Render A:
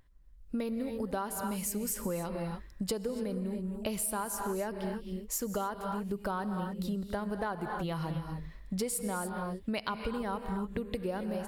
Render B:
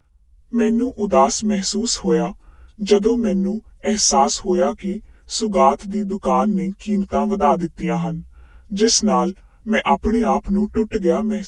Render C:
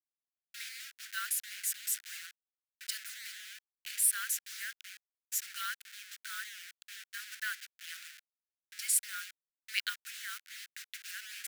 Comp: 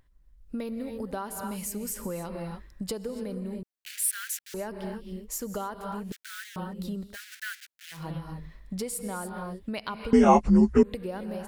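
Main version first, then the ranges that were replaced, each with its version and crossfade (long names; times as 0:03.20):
A
0:03.63–0:04.54: punch in from C
0:06.12–0:06.56: punch in from C
0:07.09–0:07.99: punch in from C, crossfade 0.16 s
0:10.13–0:10.83: punch in from B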